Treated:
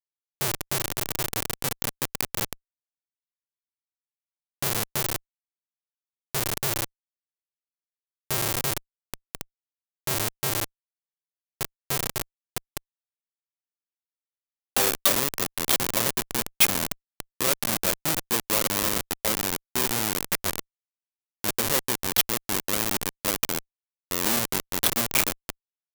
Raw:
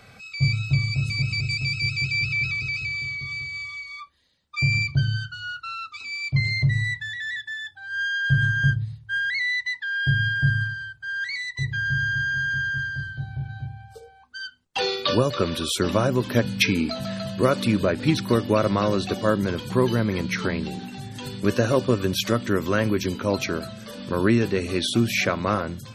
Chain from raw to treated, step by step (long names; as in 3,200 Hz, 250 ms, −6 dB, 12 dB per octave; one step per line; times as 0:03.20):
fade-out on the ending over 0.91 s
comparator with hysteresis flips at −19.5 dBFS
RIAA equalisation recording
level +2 dB